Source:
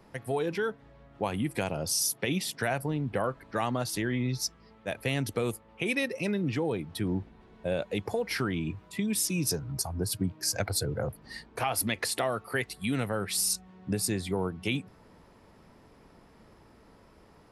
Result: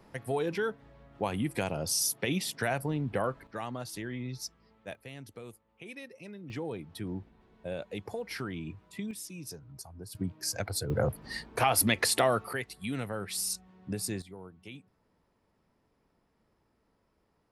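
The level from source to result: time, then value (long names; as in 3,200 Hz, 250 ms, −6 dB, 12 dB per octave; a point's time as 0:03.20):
−1 dB
from 0:03.47 −8 dB
from 0:04.95 −16 dB
from 0:06.50 −7 dB
from 0:09.11 −14 dB
from 0:10.15 −4 dB
from 0:10.90 +4 dB
from 0:12.53 −5 dB
from 0:14.22 −16.5 dB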